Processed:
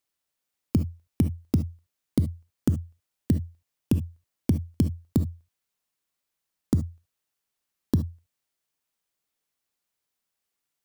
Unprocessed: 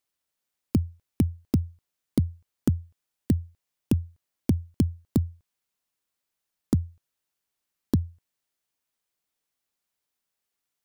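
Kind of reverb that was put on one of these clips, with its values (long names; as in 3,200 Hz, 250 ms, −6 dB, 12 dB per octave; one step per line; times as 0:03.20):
reverb whose tail is shaped and stops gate 90 ms rising, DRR 10 dB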